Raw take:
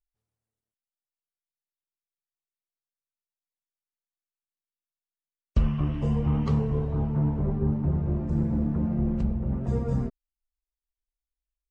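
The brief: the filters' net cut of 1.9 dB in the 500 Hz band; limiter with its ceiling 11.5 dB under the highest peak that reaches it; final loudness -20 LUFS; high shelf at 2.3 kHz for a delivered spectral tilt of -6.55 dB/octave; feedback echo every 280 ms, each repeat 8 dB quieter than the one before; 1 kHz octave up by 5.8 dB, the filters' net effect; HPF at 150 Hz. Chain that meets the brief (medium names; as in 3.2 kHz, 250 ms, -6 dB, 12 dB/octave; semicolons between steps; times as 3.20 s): high-pass 150 Hz; peaking EQ 500 Hz -4 dB; peaking EQ 1 kHz +7.5 dB; treble shelf 2.3 kHz +3.5 dB; peak limiter -28.5 dBFS; feedback delay 280 ms, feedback 40%, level -8 dB; trim +15.5 dB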